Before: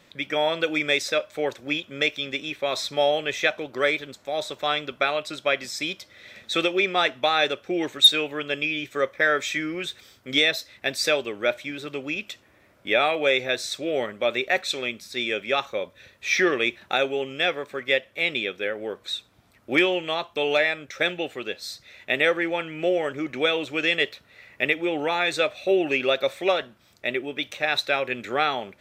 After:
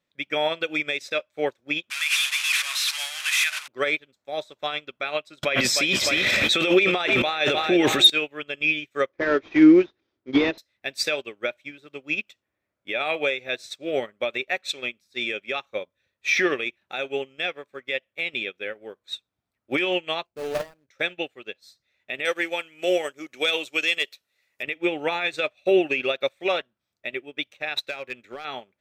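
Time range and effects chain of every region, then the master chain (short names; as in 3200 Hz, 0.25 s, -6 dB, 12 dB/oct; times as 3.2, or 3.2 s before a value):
1.9–3.68 delta modulation 64 kbps, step -18.5 dBFS + inverse Chebyshev high-pass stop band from 270 Hz, stop band 70 dB
5.43–8.1 feedback echo 0.303 s, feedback 31%, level -16 dB + fast leveller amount 100%
9.09–10.58 CVSD 32 kbps + LPF 1600 Hz 6 dB/oct + bell 330 Hz +14 dB 0.67 oct
20.25–20.89 median filter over 41 samples + high shelf 3900 Hz +3.5 dB
22.25–24.63 tone controls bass -9 dB, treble +15 dB + hard clip -10 dBFS
27.79–28.45 compressor 10:1, threshold -23 dBFS + hard clip -21.5 dBFS
whole clip: dynamic EQ 2600 Hz, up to +5 dB, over -39 dBFS, Q 2.6; limiter -14.5 dBFS; upward expander 2.5:1, over -40 dBFS; gain +9 dB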